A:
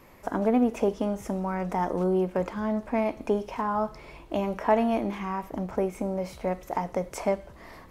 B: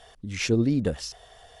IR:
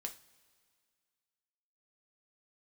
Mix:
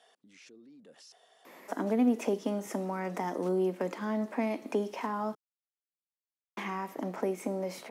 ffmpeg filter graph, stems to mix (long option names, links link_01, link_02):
-filter_complex "[0:a]equalizer=frequency=1900:width_type=o:width=0.26:gain=4.5,adelay=1450,volume=1.5dB,asplit=3[link_01][link_02][link_03];[link_01]atrim=end=5.35,asetpts=PTS-STARTPTS,afade=type=out:start_time=5.346:duration=0.004:curve=hsin[link_04];[link_02]atrim=start=5.35:end=6.57,asetpts=PTS-STARTPTS,volume=0[link_05];[link_03]atrim=start=6.57,asetpts=PTS-STARTPTS,afade=type=in:duration=0.004:curve=hsin[link_06];[link_04][link_05][link_06]concat=n=3:v=0:a=1[link_07];[1:a]acompressor=threshold=-31dB:ratio=2,alimiter=level_in=11dB:limit=-24dB:level=0:latency=1:release=15,volume=-11dB,volume=-11.5dB[link_08];[link_07][link_08]amix=inputs=2:normalize=0,highpass=frequency=230:width=0.5412,highpass=frequency=230:width=1.3066,acrossover=split=310|3000[link_09][link_10][link_11];[link_10]acompressor=threshold=-36dB:ratio=3[link_12];[link_09][link_12][link_11]amix=inputs=3:normalize=0"